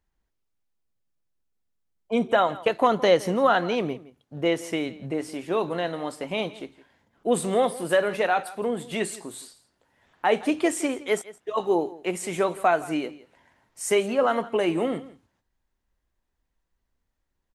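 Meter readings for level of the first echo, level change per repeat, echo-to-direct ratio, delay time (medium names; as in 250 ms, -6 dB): -19.0 dB, no regular repeats, -19.0 dB, 166 ms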